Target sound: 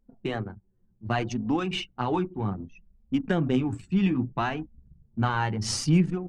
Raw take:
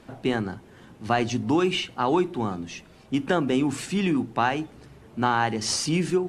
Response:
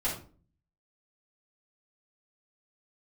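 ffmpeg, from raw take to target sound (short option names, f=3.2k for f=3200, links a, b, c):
-af "asubboost=boost=3.5:cutoff=190,anlmdn=63.1,flanger=delay=3.8:depth=7:regen=22:speed=0.64:shape=sinusoidal"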